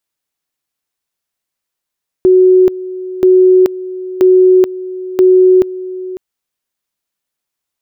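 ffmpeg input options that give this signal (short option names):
-f lavfi -i "aevalsrc='pow(10,(-3.5-16.5*gte(mod(t,0.98),0.43))/20)*sin(2*PI*370*t)':d=3.92:s=44100"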